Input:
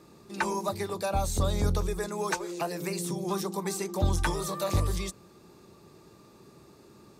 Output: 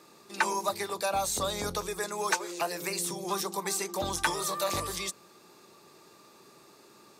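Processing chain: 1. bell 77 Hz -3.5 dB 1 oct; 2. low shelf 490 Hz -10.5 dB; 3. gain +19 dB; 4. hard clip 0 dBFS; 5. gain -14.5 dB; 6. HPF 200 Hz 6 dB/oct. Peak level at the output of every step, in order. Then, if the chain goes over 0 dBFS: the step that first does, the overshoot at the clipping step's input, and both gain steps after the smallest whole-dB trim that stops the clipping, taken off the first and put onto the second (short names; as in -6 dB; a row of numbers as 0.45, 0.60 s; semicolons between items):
-16.0, -16.0, +3.0, 0.0, -14.5, -13.5 dBFS; step 3, 3.0 dB; step 3 +16 dB, step 5 -11.5 dB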